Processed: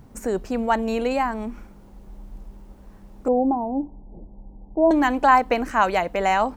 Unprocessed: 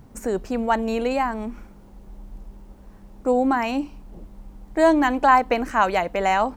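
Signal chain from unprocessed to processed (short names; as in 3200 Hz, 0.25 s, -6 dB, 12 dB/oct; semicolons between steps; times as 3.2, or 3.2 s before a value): 3.28–4.91 elliptic low-pass 880 Hz, stop band 50 dB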